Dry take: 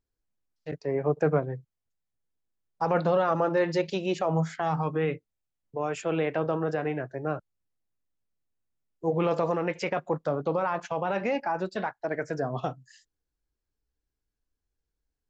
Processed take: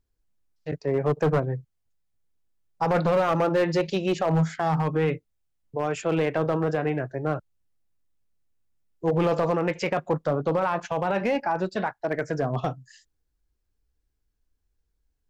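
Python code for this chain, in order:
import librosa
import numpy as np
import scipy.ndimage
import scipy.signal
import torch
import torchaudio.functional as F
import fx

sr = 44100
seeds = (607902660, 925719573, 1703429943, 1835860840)

y = fx.low_shelf(x, sr, hz=120.0, db=7.5)
y = np.clip(y, -10.0 ** (-20.0 / 20.0), 10.0 ** (-20.0 / 20.0))
y = F.gain(torch.from_numpy(y), 3.0).numpy()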